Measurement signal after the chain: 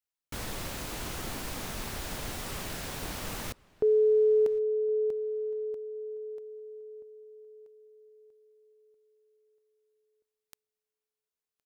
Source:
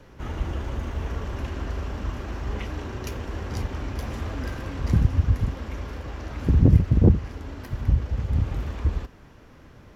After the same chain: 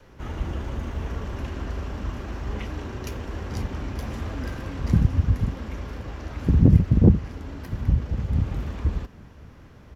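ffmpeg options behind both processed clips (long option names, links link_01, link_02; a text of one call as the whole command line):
ffmpeg -i in.wav -filter_complex "[0:a]adynamicequalizer=threshold=0.0141:dfrequency=190:dqfactor=1.4:tfrequency=190:tqfactor=1.4:attack=5:release=100:ratio=0.375:range=2.5:mode=boostabove:tftype=bell,asplit=2[link_01][link_02];[link_02]adelay=1065,lowpass=frequency=3300:poles=1,volume=-24dB,asplit=2[link_03][link_04];[link_04]adelay=1065,lowpass=frequency=3300:poles=1,volume=0.21[link_05];[link_01][link_03][link_05]amix=inputs=3:normalize=0,volume=-1dB" out.wav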